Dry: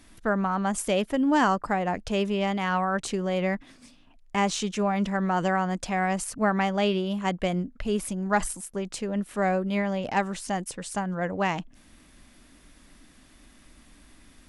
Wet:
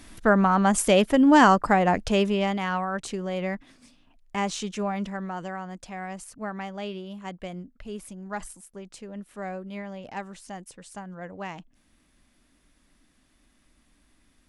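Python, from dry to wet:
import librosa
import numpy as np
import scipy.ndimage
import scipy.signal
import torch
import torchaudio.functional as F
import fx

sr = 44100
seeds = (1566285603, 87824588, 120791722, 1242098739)

y = fx.gain(x, sr, db=fx.line((1.97, 6.0), (2.86, -3.0), (4.9, -3.0), (5.46, -10.0)))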